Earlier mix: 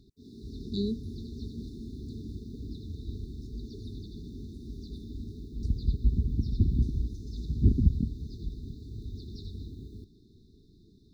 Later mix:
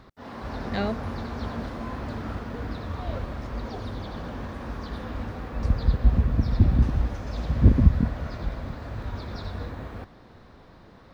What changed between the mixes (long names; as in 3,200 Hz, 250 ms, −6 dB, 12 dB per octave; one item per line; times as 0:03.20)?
background +6.0 dB
master: remove linear-phase brick-wall band-stop 440–3,500 Hz